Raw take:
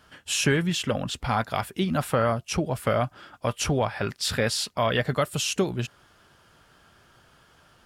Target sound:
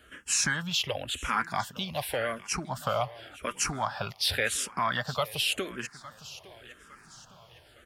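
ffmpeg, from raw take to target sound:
-filter_complex "[0:a]acrossover=split=770[s0][s1];[s0]acompressor=threshold=0.0158:ratio=6[s2];[s2][s1]amix=inputs=2:normalize=0,asettb=1/sr,asplit=3[s3][s4][s5];[s3]atrim=end=1.514[s6];[s4]atrim=start=1.51:end=2.52,asetpts=PTS-STARTPTS,afade=t=in:d=0.004:c=qsin,afade=t=out:st=1.006:d=0.004:c=qsin,asuperstop=centerf=1300:order=4:qfactor=6.3[s7];[s5]atrim=start=2.516[s8];[s6][s7]acrossfade=d=0.004:c1=hsin:c2=qsin[s9];[s9][s8]acrossfade=d=0.004:c1=qsin:c2=hsin,aecho=1:1:859|1718|2577|3436:0.126|0.0554|0.0244|0.0107,asplit=2[s10][s11];[s11]afreqshift=-0.9[s12];[s10][s12]amix=inputs=2:normalize=1,volume=1.41"

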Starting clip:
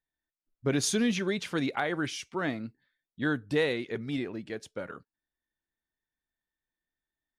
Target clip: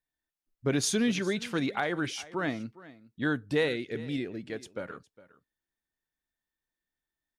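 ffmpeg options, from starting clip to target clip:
-filter_complex "[0:a]asettb=1/sr,asplit=3[s0][s1][s2];[s0]atrim=end=3.684[s3];[s1]atrim=start=3.68:end=4.4,asetpts=PTS-STARTPTS,afade=t=in:d=0.004:c=qsin,afade=t=out:st=0.716:d=0.004:c=qsin,equalizer=f=1000:t=o:w=0.57:g=-15[s4];[s2]atrim=start=4.396[s5];[s3][s4]acrossfade=d=0.004:c1=hsin:c2=qsin[s6];[s6][s5]acrossfade=d=0.004:c1=qsin:c2=hsin,aecho=1:1:409:0.112"

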